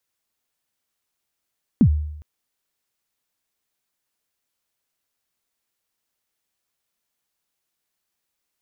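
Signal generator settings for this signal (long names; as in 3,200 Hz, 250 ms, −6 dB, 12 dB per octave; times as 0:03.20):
synth kick length 0.41 s, from 280 Hz, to 75 Hz, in 76 ms, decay 0.81 s, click off, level −8 dB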